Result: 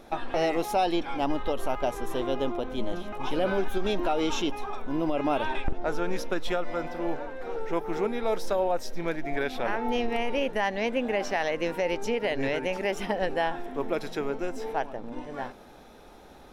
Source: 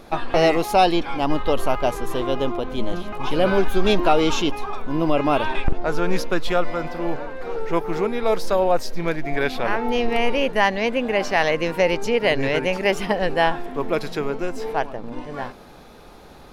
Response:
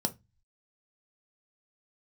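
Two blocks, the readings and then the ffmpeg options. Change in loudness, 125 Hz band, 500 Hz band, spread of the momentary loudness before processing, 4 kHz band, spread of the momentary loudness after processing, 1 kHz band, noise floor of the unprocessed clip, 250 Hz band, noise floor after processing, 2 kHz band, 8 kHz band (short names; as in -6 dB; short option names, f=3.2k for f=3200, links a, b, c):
-7.5 dB, -10.0 dB, -7.0 dB, 10 LU, -8.5 dB, 6 LU, -7.5 dB, -44 dBFS, -6.5 dB, -50 dBFS, -8.5 dB, -6.5 dB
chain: -filter_complex "[0:a]alimiter=limit=-11.5dB:level=0:latency=1:release=116,asplit=2[a][b];[1:a]atrim=start_sample=2205,lowshelf=f=340:g=-9.5[c];[b][c]afir=irnorm=-1:irlink=0,volume=-15dB[d];[a][d]amix=inputs=2:normalize=0,volume=-7dB"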